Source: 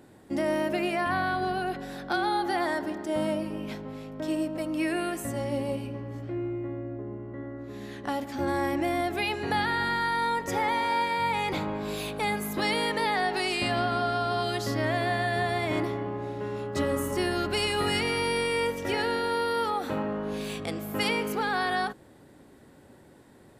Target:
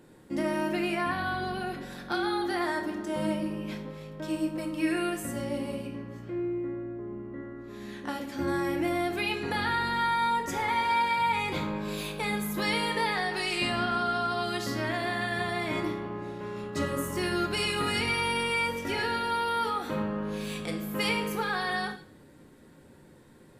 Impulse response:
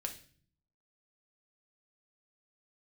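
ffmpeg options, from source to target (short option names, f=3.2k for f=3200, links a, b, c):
-filter_complex "[0:a]equalizer=f=710:w=3.6:g=-5.5[a];[1:a]atrim=start_sample=2205,asetrate=42777,aresample=44100[b];[a][b]afir=irnorm=-1:irlink=0"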